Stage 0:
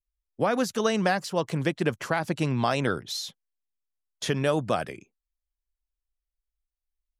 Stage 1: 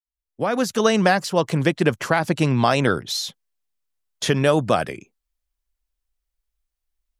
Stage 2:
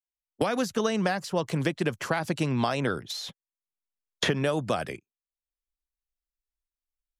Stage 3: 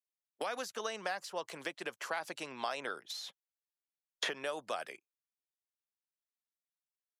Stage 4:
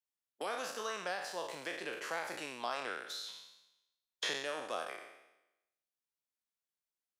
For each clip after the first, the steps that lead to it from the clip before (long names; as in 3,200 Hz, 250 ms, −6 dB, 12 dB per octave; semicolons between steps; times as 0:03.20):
fade in at the beginning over 0.84 s; level +7 dB
noise gate −31 dBFS, range −36 dB; multiband upward and downward compressor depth 100%; level −8.5 dB
high-pass filter 590 Hz 12 dB per octave; level −7.5 dB
peak hold with a decay on every bin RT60 0.93 s; tape wow and flutter 29 cents; level −4 dB